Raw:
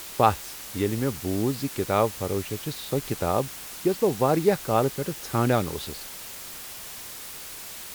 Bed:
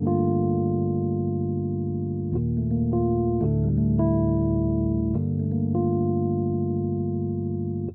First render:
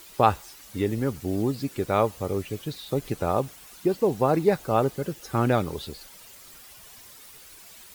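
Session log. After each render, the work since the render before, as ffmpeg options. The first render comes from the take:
-af "afftdn=nr=11:nf=-40"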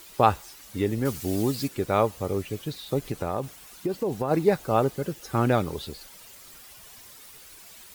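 -filter_complex "[0:a]asettb=1/sr,asplit=3[s0][s1][s2];[s0]atrim=end=1.054[s3];[s1]atrim=start=1.05:end=1.68,asetpts=PTS-STARTPTS,afade=t=in:d=0.004:c=qsin,afade=t=out:st=0.626:d=0.004:c=qsin,highshelf=f=2100:g=9[s4];[s2]atrim=start=1.676[s5];[s3][s4]acrossfade=d=0.004:c1=hsin:c2=qsin[s6];[s6][s5]acrossfade=d=0.004:c1=qsin:c2=hsin,asplit=3[s7][s8][s9];[s7]afade=t=out:st=3.08:d=0.02[s10];[s8]acompressor=threshold=0.0708:ratio=4:attack=3.2:release=140:knee=1:detection=peak,afade=t=in:st=3.08:d=0.02,afade=t=out:st=4.3:d=0.02[s11];[s9]afade=t=in:st=4.3:d=0.02[s12];[s10][s11][s12]amix=inputs=3:normalize=0"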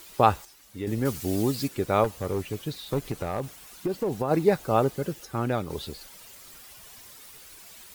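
-filter_complex "[0:a]asettb=1/sr,asplit=3[s0][s1][s2];[s0]atrim=end=2.044[s3];[s1]atrim=start=2.04:end=4.17,asetpts=PTS-STARTPTS,afade=t=in:d=0.004:c=qsin,afade=t=out:st=2.126:d=0.004:c=qsin,aeval=exprs='clip(val(0),-1,0.075)':c=same[s4];[s2]atrim=start=4.166[s5];[s3][s4]acrossfade=d=0.004:c1=hsin:c2=qsin[s6];[s6][s5]acrossfade=d=0.004:c1=qsin:c2=hsin,asplit=5[s7][s8][s9][s10][s11];[s7]atrim=end=0.452[s12];[s8]atrim=start=0.448:end=0.872,asetpts=PTS-STARTPTS,volume=0.422[s13];[s9]atrim=start=0.868:end=5.252[s14];[s10]atrim=start=5.248:end=5.702,asetpts=PTS-STARTPTS,volume=0.562[s15];[s11]atrim=start=5.698[s16];[s12][s13]acrossfade=d=0.004:c1=hsin:c2=hsin[s17];[s17][s14]acrossfade=d=0.004:c1=hsin:c2=hsin[s18];[s18][s15]acrossfade=d=0.004:c1=hsin:c2=hsin[s19];[s19][s16]acrossfade=d=0.004:c1=hsin:c2=hsin"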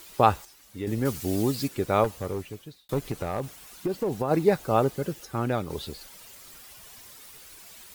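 -filter_complex "[0:a]asplit=2[s0][s1];[s0]atrim=end=2.89,asetpts=PTS-STARTPTS,afade=t=out:st=2.13:d=0.76[s2];[s1]atrim=start=2.89,asetpts=PTS-STARTPTS,afade=t=in:d=0.004:c=hsin[s3];[s2][s3]concat=n=2:v=0:a=1"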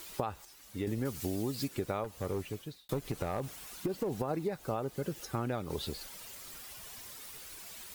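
-af "alimiter=limit=0.224:level=0:latency=1:release=419,acompressor=threshold=0.0282:ratio=6"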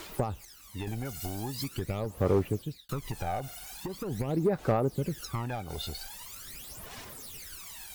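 -af "asoftclip=type=hard:threshold=0.0376,aphaser=in_gain=1:out_gain=1:delay=1.4:decay=0.71:speed=0.43:type=sinusoidal"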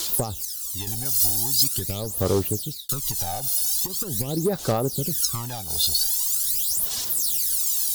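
-af "aphaser=in_gain=1:out_gain=1:delay=1.2:decay=0.32:speed=0.43:type=sinusoidal,aexciter=amount=5:drive=8.9:freq=3400"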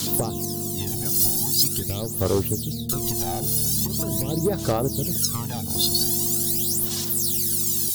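-filter_complex "[1:a]volume=0.398[s0];[0:a][s0]amix=inputs=2:normalize=0"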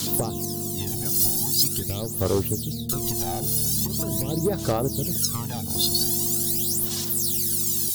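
-af "volume=0.891"

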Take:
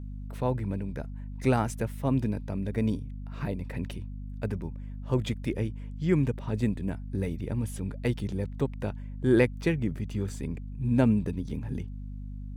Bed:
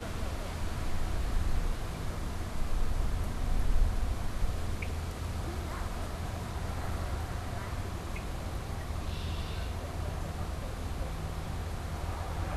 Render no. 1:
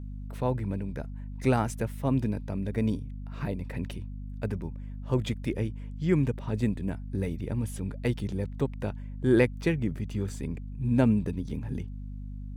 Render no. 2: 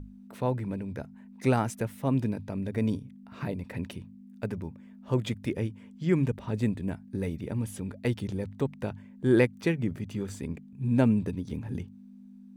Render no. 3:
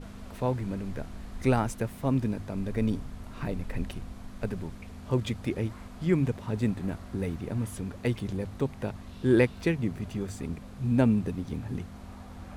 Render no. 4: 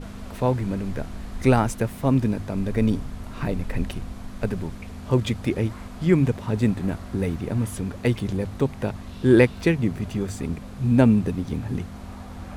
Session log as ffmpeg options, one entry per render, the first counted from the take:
-af anull
-af "bandreject=f=50:t=h:w=6,bandreject=f=100:t=h:w=6,bandreject=f=150:t=h:w=6"
-filter_complex "[1:a]volume=0.316[s0];[0:a][s0]amix=inputs=2:normalize=0"
-af "volume=2.11"

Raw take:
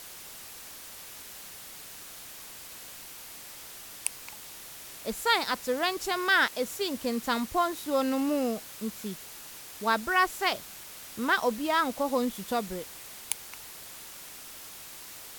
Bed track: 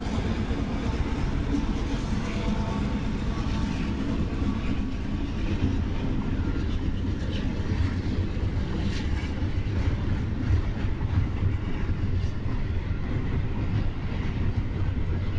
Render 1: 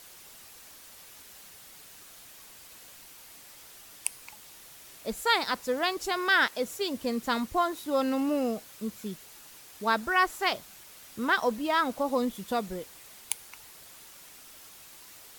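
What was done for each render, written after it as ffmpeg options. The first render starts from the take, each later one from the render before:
-af "afftdn=nr=6:nf=-45"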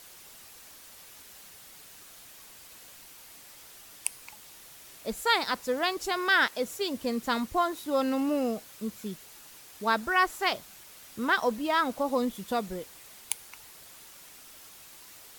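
-af anull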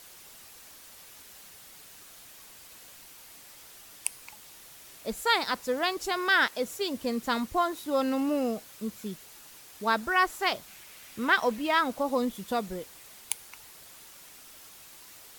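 -filter_complex "[0:a]asettb=1/sr,asplit=3[s0][s1][s2];[s0]atrim=end=10.674[s3];[s1]atrim=start=10.67:end=11.79,asetpts=PTS-STARTPTS,afade=t=in:d=0.004:c=qsin,afade=t=out:st=1.116:d=0.004:c=qsin,equalizer=f=2300:w=1.5:g=5.5[s4];[s2]atrim=start=11.786[s5];[s3][s4]acrossfade=d=0.004:c1=hsin:c2=qsin[s6];[s6][s5]acrossfade=d=0.004:c1=qsin:c2=hsin"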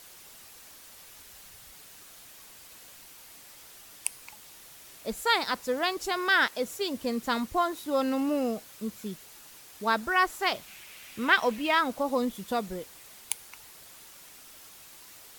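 -filter_complex "[0:a]asettb=1/sr,asplit=3[s0][s1][s2];[s0]atrim=end=0.934[s3];[s1]atrim=start=0.93:end=1.72,asetpts=PTS-STARTPTS,afade=t=in:d=0.004:c=qsin,afade=t=out:st=0.786:d=0.004:c=qsin,asubboost=boost=10:cutoff=130[s4];[s2]atrim=start=1.716[s5];[s3][s4]acrossfade=d=0.004:c1=hsin:c2=qsin[s6];[s6][s5]acrossfade=d=0.004:c1=qsin:c2=hsin,asettb=1/sr,asplit=3[s7][s8][s9];[s7]atrim=end=10.544[s10];[s8]atrim=start=10.54:end=11.75,asetpts=PTS-STARTPTS,afade=t=in:d=0.004:c=qsin,afade=t=out:st=1.206:d=0.004:c=qsin,equalizer=f=2600:t=o:w=0.77:g=5.5[s11];[s9]atrim=start=11.746[s12];[s10][s11]acrossfade=d=0.004:c1=hsin:c2=qsin[s13];[s13][s12]acrossfade=d=0.004:c1=qsin:c2=hsin"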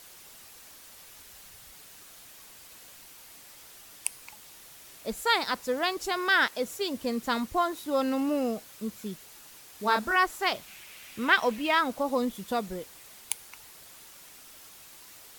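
-filter_complex "[0:a]asettb=1/sr,asplit=3[s0][s1][s2];[s0]atrim=end=9.764[s3];[s1]atrim=start=9.76:end=10.16,asetpts=PTS-STARTPTS,afade=t=in:d=0.004:c=qsin,afade=t=out:st=0.396:d=0.004:c=qsin,asplit=2[s4][s5];[s5]adelay=29,volume=0.596[s6];[s4][s6]amix=inputs=2:normalize=0,atrim=end_sample=17640[s7];[s2]atrim=start=10.156[s8];[s3][s7]acrossfade=d=0.004:c1=hsin:c2=qsin[s9];[s9][s8]acrossfade=d=0.004:c1=qsin:c2=hsin"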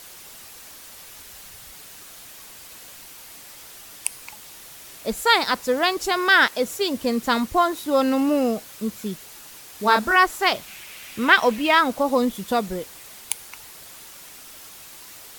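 -af "volume=2.37,alimiter=limit=0.794:level=0:latency=1"

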